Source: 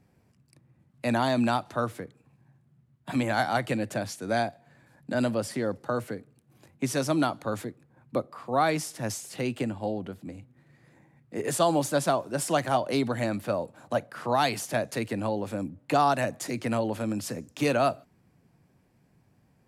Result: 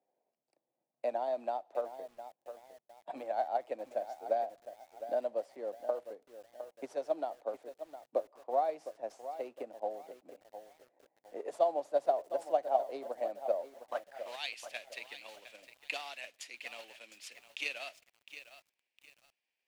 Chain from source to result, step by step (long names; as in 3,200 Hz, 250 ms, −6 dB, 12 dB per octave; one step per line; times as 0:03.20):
high-pass filter 490 Hz 12 dB per octave
parametric band 1,300 Hz −14 dB 1.4 octaves
noise that follows the level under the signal 14 dB
transient designer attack +8 dB, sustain −1 dB
band-pass filter sweep 680 Hz → 2,600 Hz, 0:13.72–0:14.27
feedback echo at a low word length 709 ms, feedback 35%, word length 9 bits, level −11.5 dB